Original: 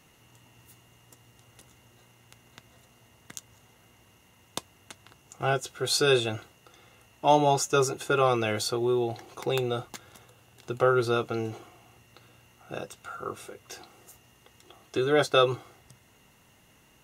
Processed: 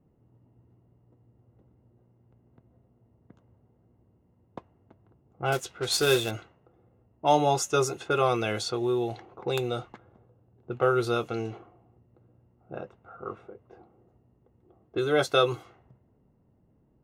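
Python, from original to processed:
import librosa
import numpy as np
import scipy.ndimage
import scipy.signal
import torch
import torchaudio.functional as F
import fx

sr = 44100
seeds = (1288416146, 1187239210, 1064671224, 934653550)

y = fx.quant_companded(x, sr, bits=4, at=(5.52, 6.31))
y = fx.env_lowpass(y, sr, base_hz=400.0, full_db=-23.5)
y = y * 10.0 ** (-1.0 / 20.0)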